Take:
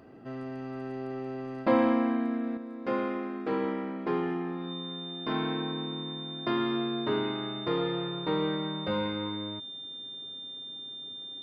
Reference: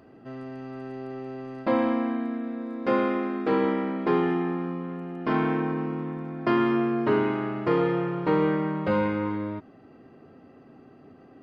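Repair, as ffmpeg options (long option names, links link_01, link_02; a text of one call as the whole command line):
ffmpeg -i in.wav -af "bandreject=frequency=3600:width=30,asetnsamples=nb_out_samples=441:pad=0,asendcmd='2.57 volume volume 6.5dB',volume=0dB" out.wav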